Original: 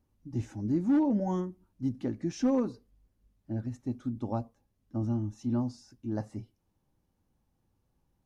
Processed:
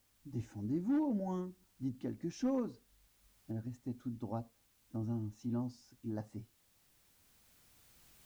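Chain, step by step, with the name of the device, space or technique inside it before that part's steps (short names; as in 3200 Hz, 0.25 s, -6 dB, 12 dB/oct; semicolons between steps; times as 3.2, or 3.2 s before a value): cheap recorder with automatic gain (white noise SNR 34 dB; recorder AGC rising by 5.4 dB/s); gain -7.5 dB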